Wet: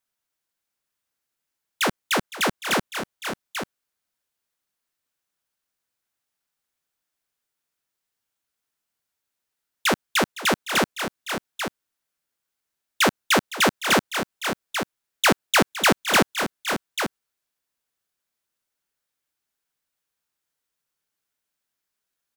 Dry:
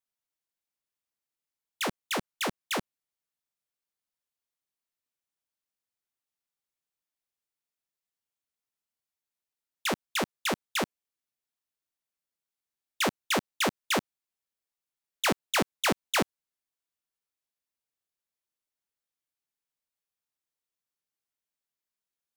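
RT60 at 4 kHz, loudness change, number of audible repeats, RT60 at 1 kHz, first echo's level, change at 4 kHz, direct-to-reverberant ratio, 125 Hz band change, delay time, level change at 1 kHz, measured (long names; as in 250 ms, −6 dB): no reverb audible, +7.0 dB, 2, no reverb audible, −15.5 dB, +8.5 dB, no reverb audible, +8.0 dB, 512 ms, +9.0 dB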